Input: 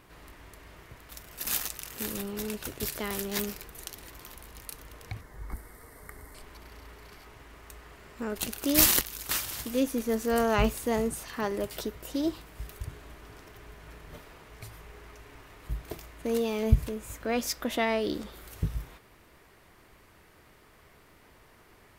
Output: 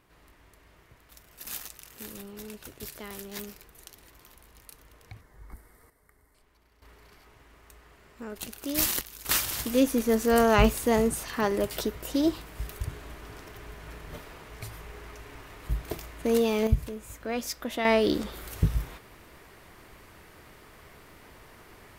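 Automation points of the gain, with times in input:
-7.5 dB
from 5.9 s -16.5 dB
from 6.82 s -5.5 dB
from 9.25 s +4.5 dB
from 16.67 s -2.5 dB
from 17.85 s +6 dB

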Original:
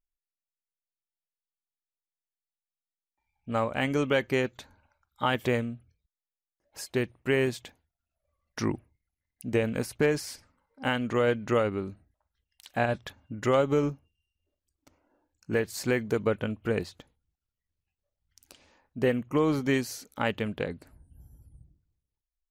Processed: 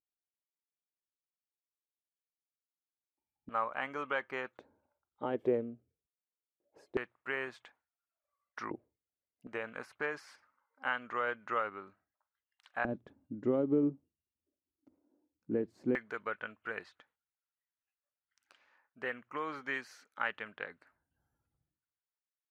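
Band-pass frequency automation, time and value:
band-pass, Q 2.1
320 Hz
from 3.49 s 1200 Hz
from 4.59 s 400 Hz
from 6.97 s 1300 Hz
from 8.71 s 470 Hz
from 9.47 s 1300 Hz
from 12.85 s 290 Hz
from 15.95 s 1500 Hz

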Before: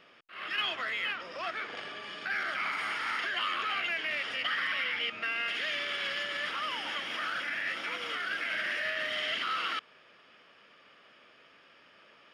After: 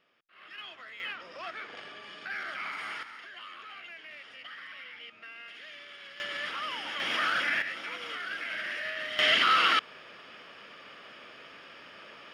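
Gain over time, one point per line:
-12.5 dB
from 1 s -4 dB
from 3.03 s -13.5 dB
from 6.2 s -1 dB
from 7 s +6 dB
from 7.62 s -2.5 dB
from 9.19 s +9.5 dB

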